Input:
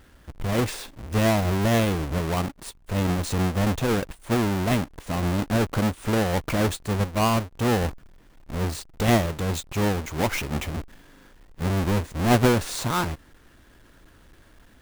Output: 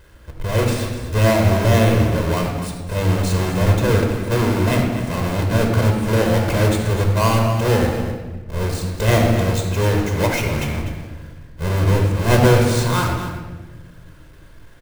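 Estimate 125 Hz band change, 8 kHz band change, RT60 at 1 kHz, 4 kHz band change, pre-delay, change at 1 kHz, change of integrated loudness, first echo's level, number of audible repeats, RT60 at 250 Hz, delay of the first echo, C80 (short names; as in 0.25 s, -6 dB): +9.0 dB, +4.0 dB, 1.1 s, +4.5 dB, 19 ms, +4.5 dB, +6.5 dB, -11.0 dB, 1, 1.8 s, 0.249 s, 4.0 dB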